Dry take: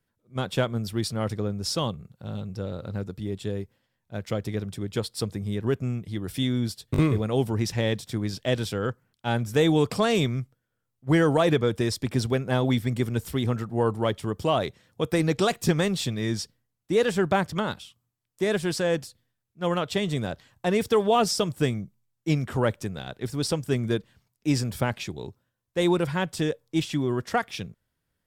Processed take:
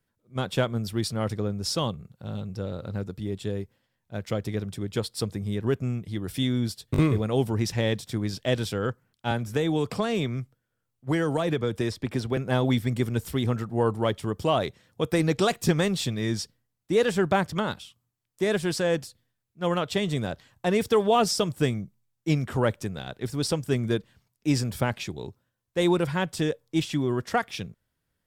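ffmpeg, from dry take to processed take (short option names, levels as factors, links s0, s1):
-filter_complex "[0:a]asettb=1/sr,asplit=3[s0][s1][s2];[s0]atrim=end=9.314[s3];[s1]atrim=start=9.31:end=12.37,asetpts=PTS-STARTPTS,afade=t=in:d=0.004:c=qsin,afade=t=out:st=3.056:d=0.004:c=qsin,acrossover=split=260|3400[s4][s5][s6];[s4]acompressor=threshold=0.0355:ratio=4[s7];[s5]acompressor=threshold=0.0562:ratio=4[s8];[s6]acompressor=threshold=0.00562:ratio=4[s9];[s7][s8][s9]amix=inputs=3:normalize=0[s10];[s2]atrim=start=12.366[s11];[s3][s10]acrossfade=d=0.004:c1=hsin:c2=qsin[s12];[s12][s11]acrossfade=d=0.004:c1=qsin:c2=hsin"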